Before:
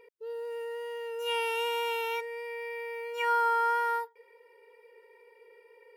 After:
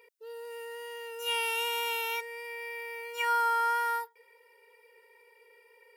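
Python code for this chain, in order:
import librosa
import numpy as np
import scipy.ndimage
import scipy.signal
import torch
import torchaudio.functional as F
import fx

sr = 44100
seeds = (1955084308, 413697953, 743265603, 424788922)

y = fx.highpass(x, sr, hz=900.0, slope=6)
y = fx.high_shelf(y, sr, hz=4700.0, db=8.0)
y = F.gain(torch.from_numpy(y), 1.0).numpy()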